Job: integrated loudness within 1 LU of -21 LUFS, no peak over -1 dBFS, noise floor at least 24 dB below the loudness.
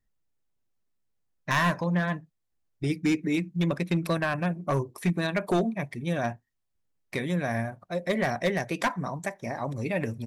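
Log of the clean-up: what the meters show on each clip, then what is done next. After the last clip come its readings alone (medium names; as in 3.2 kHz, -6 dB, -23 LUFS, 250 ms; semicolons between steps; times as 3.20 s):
clipped samples 0.6%; clipping level -18.5 dBFS; loudness -29.0 LUFS; peak level -18.5 dBFS; loudness target -21.0 LUFS
-> clip repair -18.5 dBFS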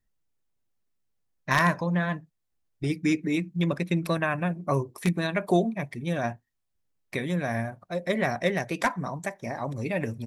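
clipped samples 0.0%; loudness -28.0 LUFS; peak level -9.5 dBFS; loudness target -21.0 LUFS
-> trim +7 dB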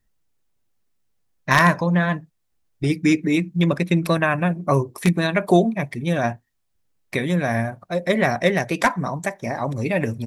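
loudness -21.0 LUFS; peak level -2.5 dBFS; noise floor -71 dBFS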